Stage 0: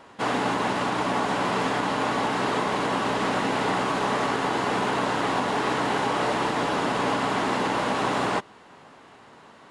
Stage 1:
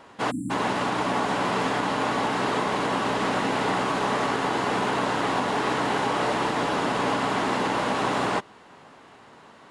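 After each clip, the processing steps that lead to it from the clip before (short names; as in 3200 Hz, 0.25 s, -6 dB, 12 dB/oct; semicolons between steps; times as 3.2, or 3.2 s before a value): spectral delete 0.31–0.51, 330–7200 Hz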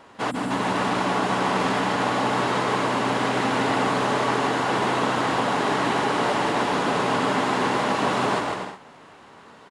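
bouncing-ball echo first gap 0.15 s, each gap 0.65×, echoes 5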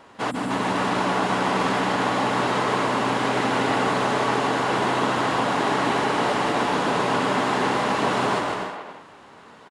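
speakerphone echo 0.28 s, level -8 dB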